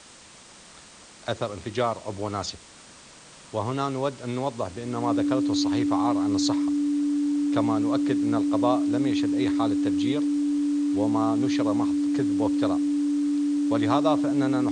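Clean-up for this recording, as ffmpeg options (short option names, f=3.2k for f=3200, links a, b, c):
-af "bandreject=f=290:w=30,afwtdn=0.005"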